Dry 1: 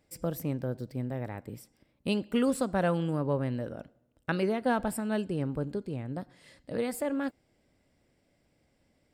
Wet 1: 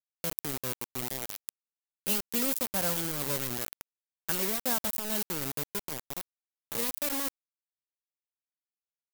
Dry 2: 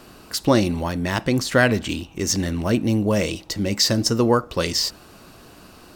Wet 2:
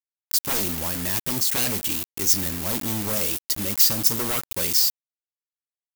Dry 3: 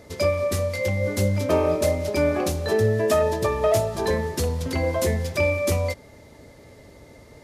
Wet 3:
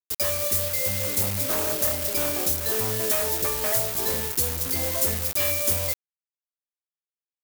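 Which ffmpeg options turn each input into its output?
-af "acrusher=bits=4:mix=0:aa=0.000001,aeval=exprs='0.141*(abs(mod(val(0)/0.141+3,4)-2)-1)':c=same,aemphasis=mode=production:type=75fm,volume=-7dB"

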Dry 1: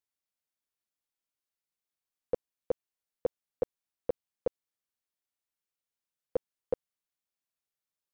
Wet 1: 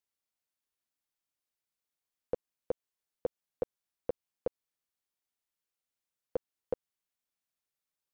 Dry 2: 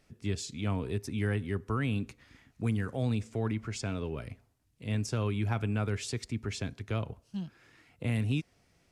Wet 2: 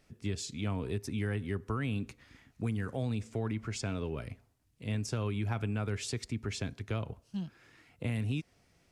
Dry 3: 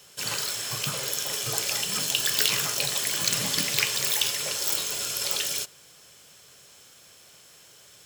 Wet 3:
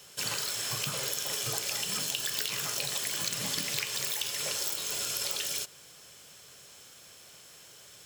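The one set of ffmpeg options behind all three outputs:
-af "acompressor=threshold=-29dB:ratio=6"

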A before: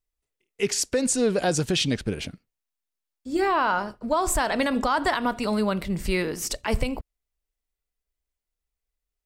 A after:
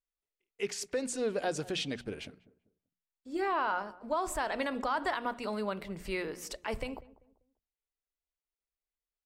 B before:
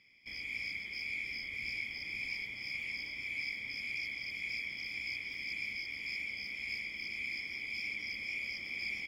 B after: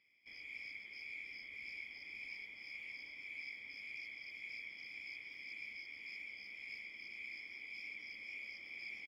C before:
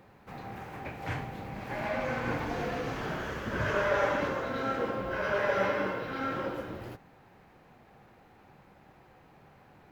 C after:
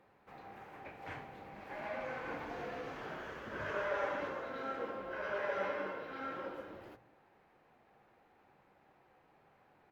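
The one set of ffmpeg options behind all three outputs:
-filter_complex "[0:a]bass=f=250:g=-8,treble=f=4k:g=-6,bandreject=f=60:t=h:w=6,bandreject=f=120:t=h:w=6,bandreject=f=180:t=h:w=6,bandreject=f=240:t=h:w=6,asplit=2[a][b];[b]adelay=195,lowpass=f=1k:p=1,volume=-18.5dB,asplit=2[c][d];[d]adelay=195,lowpass=f=1k:p=1,volume=0.35,asplit=2[e][f];[f]adelay=195,lowpass=f=1k:p=1,volume=0.35[g];[c][e][g]amix=inputs=3:normalize=0[h];[a][h]amix=inputs=2:normalize=0,volume=-8dB" -ar 48000 -c:a libvorbis -b:a 128k

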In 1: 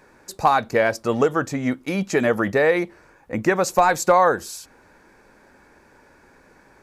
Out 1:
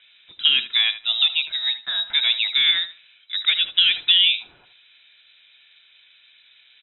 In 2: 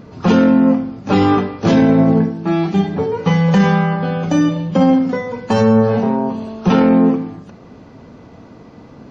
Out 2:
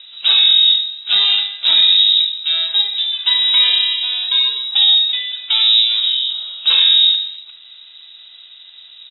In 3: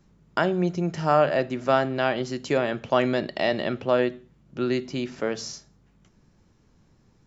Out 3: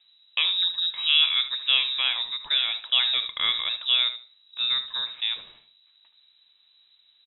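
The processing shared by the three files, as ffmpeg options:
-filter_complex "[0:a]lowpass=f=3.4k:t=q:w=0.5098,lowpass=f=3.4k:t=q:w=0.6013,lowpass=f=3.4k:t=q:w=0.9,lowpass=f=3.4k:t=q:w=2.563,afreqshift=-4000,asplit=2[a][b];[b]adelay=76,lowpass=f=2k:p=1,volume=-10dB,asplit=2[c][d];[d]adelay=76,lowpass=f=2k:p=1,volume=0.23,asplit=2[e][f];[f]adelay=76,lowpass=f=2k:p=1,volume=0.23[g];[a][c][e][g]amix=inputs=4:normalize=0,volume=-1dB"

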